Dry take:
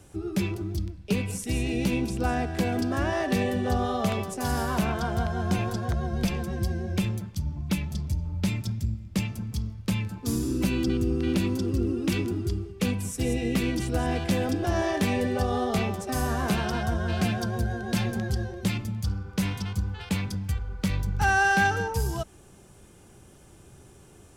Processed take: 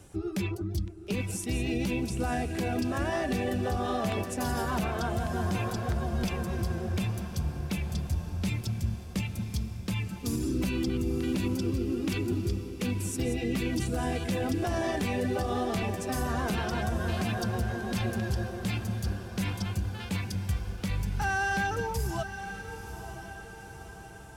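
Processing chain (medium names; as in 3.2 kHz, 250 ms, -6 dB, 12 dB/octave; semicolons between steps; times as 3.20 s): reverb removal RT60 0.51 s; peak limiter -21.5 dBFS, peak gain reduction 7.5 dB; echo that smears into a reverb 955 ms, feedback 54%, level -10.5 dB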